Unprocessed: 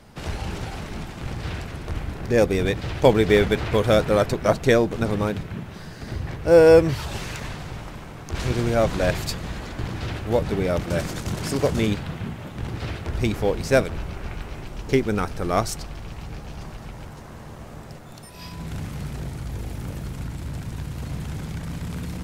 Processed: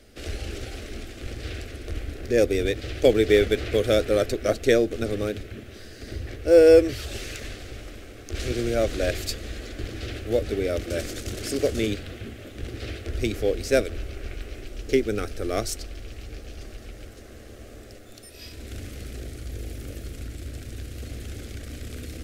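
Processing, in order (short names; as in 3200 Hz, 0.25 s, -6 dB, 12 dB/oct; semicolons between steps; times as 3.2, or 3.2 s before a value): fixed phaser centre 390 Hz, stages 4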